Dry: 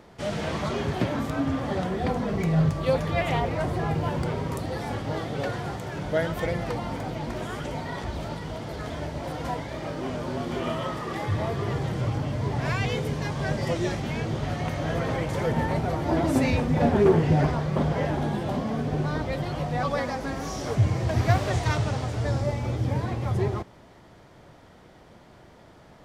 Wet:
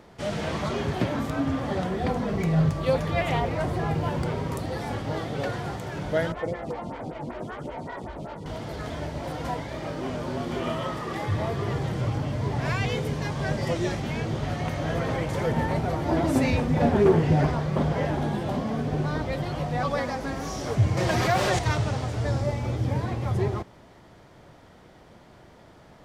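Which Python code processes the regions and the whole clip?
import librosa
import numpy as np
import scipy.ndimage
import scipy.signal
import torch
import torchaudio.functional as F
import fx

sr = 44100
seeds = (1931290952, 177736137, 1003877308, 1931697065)

y = fx.chain(x, sr, fx.median_filter(points=9),
    fx.lowpass(hz=8500.0, slope=12),
    fx.stagger_phaser(hz=5.2), at=(6.32, 8.46))
y = fx.chain(y, sr, fx.low_shelf(hz=310.0, db=-8.5),
    fx.comb(ms=5.6, depth=0.49),
    fx.env_flatten(amount_pct=70), at=(20.97, 21.59))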